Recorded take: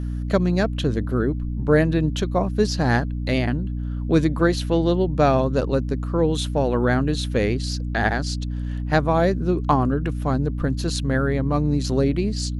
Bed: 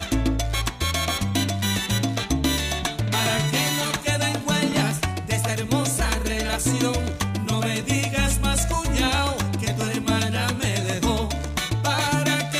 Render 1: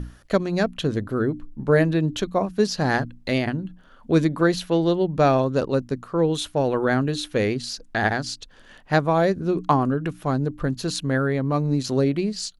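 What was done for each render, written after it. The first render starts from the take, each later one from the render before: hum notches 60/120/180/240/300 Hz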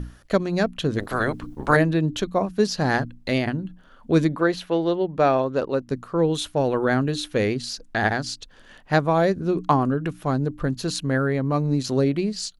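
0.98–1.75 s: spectral peaks clipped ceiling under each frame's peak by 25 dB; 4.36–5.88 s: tone controls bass -8 dB, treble -8 dB; 10.97–11.59 s: band-stop 3.5 kHz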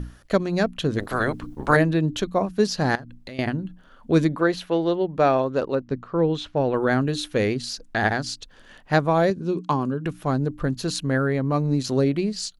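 2.95–3.39 s: compression, threshold -35 dBFS; 5.75–6.74 s: distance through air 170 m; 9.30–10.06 s: cabinet simulation 140–9700 Hz, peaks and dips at 290 Hz -4 dB, 470 Hz -3 dB, 700 Hz -10 dB, 1.3 kHz -7 dB, 1.9 kHz -9 dB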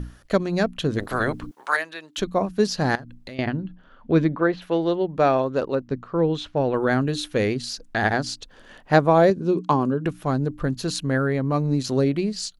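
1.51–2.18 s: high-pass 1.1 kHz; 3.34–4.61 s: low-pass 5.1 kHz -> 2.4 kHz; 8.13–10.09 s: peaking EQ 500 Hz +4.5 dB 2.5 oct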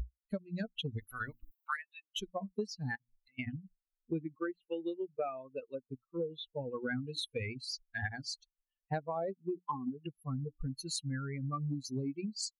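expander on every frequency bin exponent 3; compression 12:1, threshold -33 dBFS, peak gain reduction 19 dB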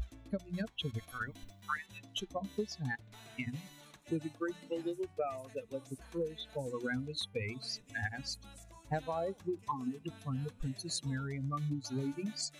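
add bed -32.5 dB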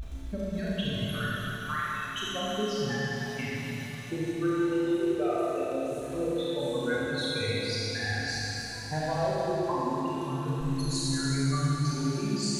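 Schroeder reverb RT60 3.8 s, combs from 26 ms, DRR -8.5 dB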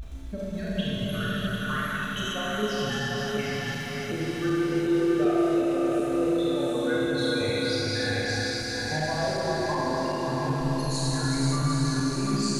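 backward echo that repeats 375 ms, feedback 72%, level -3 dB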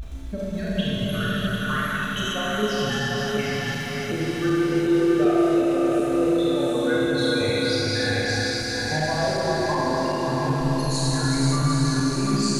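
trim +4 dB

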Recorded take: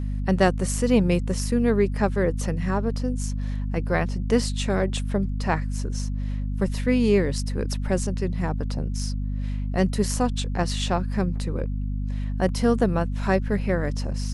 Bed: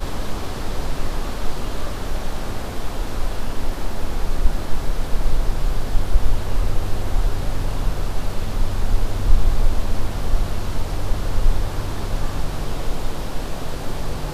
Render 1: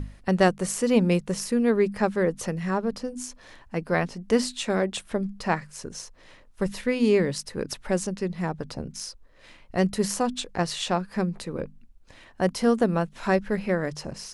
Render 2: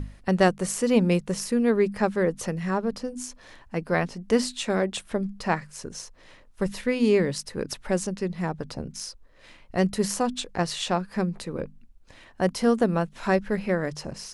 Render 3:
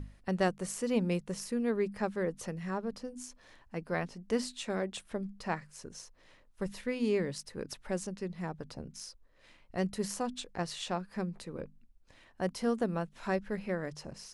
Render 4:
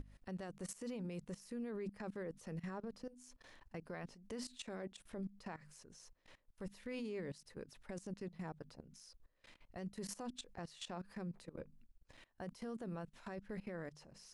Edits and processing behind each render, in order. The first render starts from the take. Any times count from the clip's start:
hum notches 50/100/150/200/250 Hz
no audible change
trim -9.5 dB
level held to a coarse grid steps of 20 dB; peak limiter -36.5 dBFS, peak gain reduction 10.5 dB

